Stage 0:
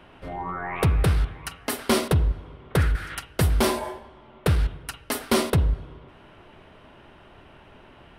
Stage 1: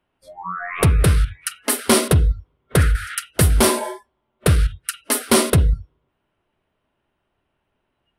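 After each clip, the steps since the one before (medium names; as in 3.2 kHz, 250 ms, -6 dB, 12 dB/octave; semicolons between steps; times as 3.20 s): peaking EQ 9.7 kHz +8.5 dB 0.83 oct; spectral noise reduction 29 dB; trim +5.5 dB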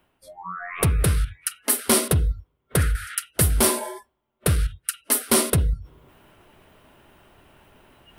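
reverse; upward compressor, threshold -28 dBFS; reverse; treble shelf 10 kHz +11.5 dB; trim -5.5 dB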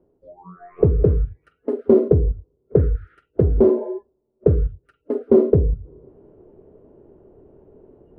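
in parallel at -10.5 dB: short-mantissa float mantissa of 2-bit; on the sum: resonant low-pass 430 Hz, resonance Q 3.7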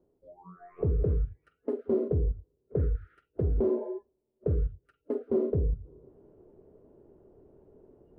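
peak limiter -11 dBFS, peak gain reduction 8 dB; trim -8 dB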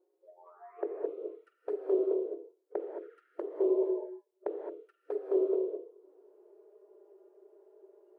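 touch-sensitive flanger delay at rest 5.6 ms, full sweep at -26 dBFS; brick-wall FIR high-pass 310 Hz; gated-style reverb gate 240 ms rising, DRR 3 dB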